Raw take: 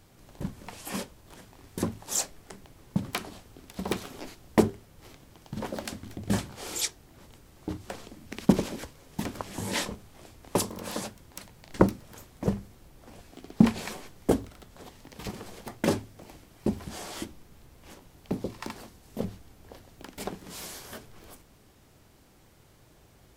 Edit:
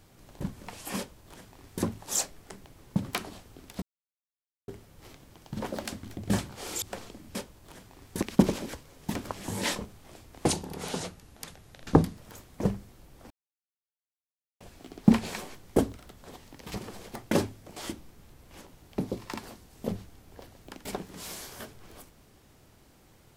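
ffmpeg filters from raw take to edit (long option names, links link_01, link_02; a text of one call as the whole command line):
ffmpeg -i in.wav -filter_complex "[0:a]asplit=10[link_01][link_02][link_03][link_04][link_05][link_06][link_07][link_08][link_09][link_10];[link_01]atrim=end=3.82,asetpts=PTS-STARTPTS,afade=type=out:start_time=3.816:duration=0.004:curve=hsin[link_11];[link_02]atrim=start=3.82:end=4.68,asetpts=PTS-STARTPTS,volume=0[link_12];[link_03]atrim=start=4.68:end=6.822,asetpts=PTS-STARTPTS,afade=type=in:duration=0.004:curve=hsin[link_13];[link_04]atrim=start=7.788:end=8.322[link_14];[link_05]atrim=start=0.968:end=1.842[link_15];[link_06]atrim=start=8.318:end=10.554[link_16];[link_07]atrim=start=10.55:end=11.99,asetpts=PTS-STARTPTS,asetrate=37044,aresample=44100[link_17];[link_08]atrim=start=11.986:end=13.13,asetpts=PTS-STARTPTS,afade=type=out:start_time=1.14:duration=0.004:curve=hsin,apad=pad_dur=1.3[link_18];[link_09]atrim=start=13.13:end=16.292,asetpts=PTS-STARTPTS,afade=type=in:duration=0.004:curve=hsin[link_19];[link_10]atrim=start=17.088[link_20];[link_11][link_12][link_13]concat=n=3:v=0:a=1[link_21];[link_21][link_14]acrossfade=duration=0.004:curve1=hsin:curve2=hsin[link_22];[link_22][link_15]acrossfade=duration=0.004:curve1=hsin:curve2=hsin[link_23];[link_23][link_16]acrossfade=duration=0.004:curve1=hsin:curve2=hsin[link_24];[link_24][link_17]acrossfade=duration=0.004:curve1=hsin:curve2=hsin[link_25];[link_18][link_19]concat=n=2:v=0:a=1[link_26];[link_25][link_26]acrossfade=duration=0.004:curve1=hsin:curve2=hsin[link_27];[link_27][link_20]acrossfade=duration=0.004:curve1=hsin:curve2=hsin" out.wav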